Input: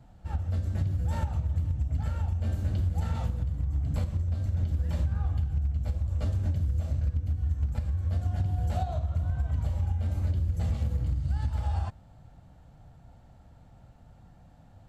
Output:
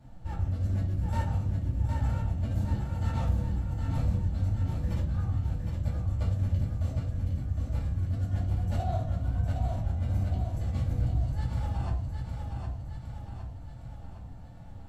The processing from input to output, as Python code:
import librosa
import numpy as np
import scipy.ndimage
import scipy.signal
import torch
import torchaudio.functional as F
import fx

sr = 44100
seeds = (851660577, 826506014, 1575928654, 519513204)

p1 = fx.over_compress(x, sr, threshold_db=-29.0, ratio=-0.5)
p2 = p1 + fx.echo_feedback(p1, sr, ms=761, feedback_pct=56, wet_db=-5.0, dry=0)
p3 = fx.room_shoebox(p2, sr, seeds[0], volume_m3=230.0, walls='furnished', distance_m=2.5)
y = p3 * librosa.db_to_amplitude(-5.0)